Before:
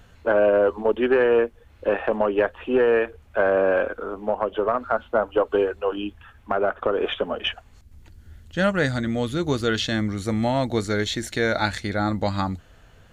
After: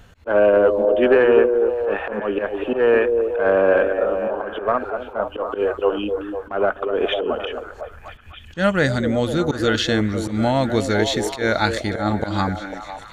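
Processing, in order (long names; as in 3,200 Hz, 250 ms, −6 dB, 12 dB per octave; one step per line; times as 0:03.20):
volume swells 116 ms
echo through a band-pass that steps 250 ms, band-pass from 390 Hz, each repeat 0.7 octaves, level −3 dB
level +3.5 dB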